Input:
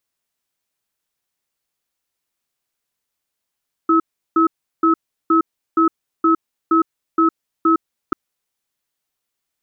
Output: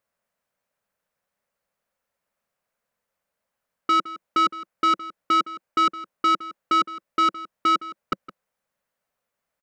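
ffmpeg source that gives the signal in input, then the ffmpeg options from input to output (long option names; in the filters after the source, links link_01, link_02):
-f lavfi -i "aevalsrc='0.211*(sin(2*PI*327*t)+sin(2*PI*1290*t))*clip(min(mod(t,0.47),0.11-mod(t,0.47))/0.005,0,1)':duration=4.24:sample_rate=44100"
-filter_complex "[0:a]firequalizer=gain_entry='entry(130,0);entry(190,6);entry(330,-5);entry(540,11);entry(770,4);entry(1500,4);entry(3400,-7)':delay=0.05:min_phase=1,asoftclip=type=tanh:threshold=-16dB,asplit=2[link_01][link_02];[link_02]adelay=163.3,volume=-16dB,highshelf=frequency=4000:gain=-3.67[link_03];[link_01][link_03]amix=inputs=2:normalize=0"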